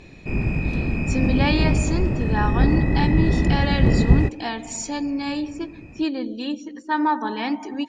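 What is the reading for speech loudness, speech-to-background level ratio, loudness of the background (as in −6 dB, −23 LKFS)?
−26.0 LKFS, −4.5 dB, −21.5 LKFS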